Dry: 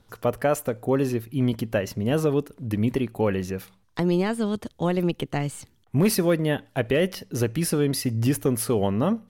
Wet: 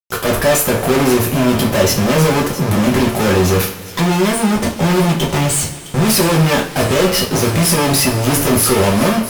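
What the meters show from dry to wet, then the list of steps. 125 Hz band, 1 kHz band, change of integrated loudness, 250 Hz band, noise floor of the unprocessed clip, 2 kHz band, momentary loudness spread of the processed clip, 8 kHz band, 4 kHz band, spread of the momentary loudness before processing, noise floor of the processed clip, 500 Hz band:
+10.0 dB, +14.5 dB, +11.0 dB, +9.5 dB, -62 dBFS, +14.5 dB, 4 LU, +17.0 dB, +17.0 dB, 6 LU, -30 dBFS, +9.0 dB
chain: fuzz box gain 47 dB, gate -46 dBFS; feedback echo behind a high-pass 662 ms, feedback 65%, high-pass 2.2 kHz, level -14 dB; two-slope reverb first 0.33 s, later 3.2 s, from -22 dB, DRR -2.5 dB; trim -3 dB

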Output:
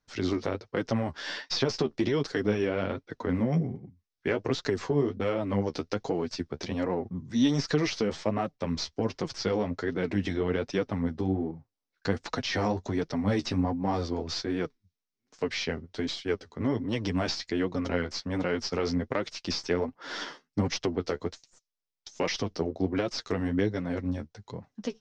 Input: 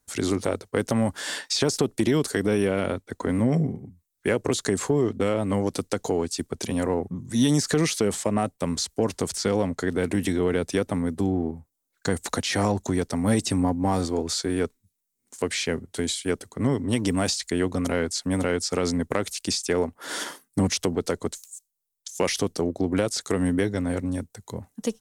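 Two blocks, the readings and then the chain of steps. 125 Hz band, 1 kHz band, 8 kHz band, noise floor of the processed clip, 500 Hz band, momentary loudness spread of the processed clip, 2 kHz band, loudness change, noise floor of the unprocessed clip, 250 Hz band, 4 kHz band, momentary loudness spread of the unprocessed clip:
-4.5 dB, -4.0 dB, -13.5 dB, -85 dBFS, -4.5 dB, 7 LU, -3.5 dB, -4.5 dB, -78 dBFS, -4.5 dB, -4.5 dB, 8 LU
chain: tracing distortion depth 0.024 ms; flange 1.3 Hz, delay 5.4 ms, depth 8.7 ms, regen +24%; Chebyshev low-pass 5.5 kHz, order 4

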